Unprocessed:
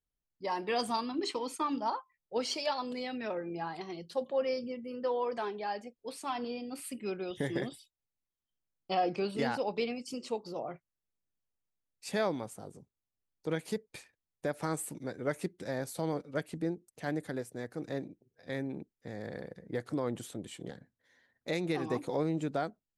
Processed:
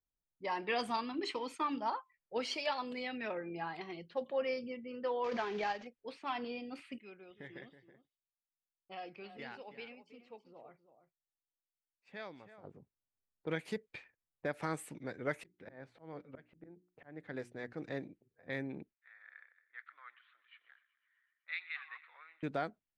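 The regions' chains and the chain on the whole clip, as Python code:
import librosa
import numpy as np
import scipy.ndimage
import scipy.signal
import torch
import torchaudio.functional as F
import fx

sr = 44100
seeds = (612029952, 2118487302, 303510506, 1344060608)

y = fx.chain(x, sr, fx.cvsd(bps=32000),
    fx.transient(attack_db=6, sustain_db=-3),
    fx.pre_swell(db_per_s=21.0), at=(5.24, 5.87))
y = fx.chain(y, sr, fx.pre_emphasis(coefficient=0.8),
    fx.echo_single(ms=325, db=-12.0), at=(6.98, 12.64))
y = fx.chain(y, sr, fx.auto_swell(attack_ms=392.0),
    fx.hum_notches(base_hz=60, count=6), at=(15.39, 17.73))
y = fx.chain(y, sr, fx.cheby1_bandpass(low_hz=1300.0, high_hz=4000.0, order=3),
    fx.echo_wet_highpass(ms=126, feedback_pct=76, hz=1700.0, wet_db=-15), at=(18.93, 22.43))
y = fx.high_shelf(y, sr, hz=4200.0, db=-8.0)
y = fx.env_lowpass(y, sr, base_hz=1000.0, full_db=-33.5)
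y = fx.peak_eq(y, sr, hz=2300.0, db=9.0, octaves=1.5)
y = y * librosa.db_to_amplitude(-4.5)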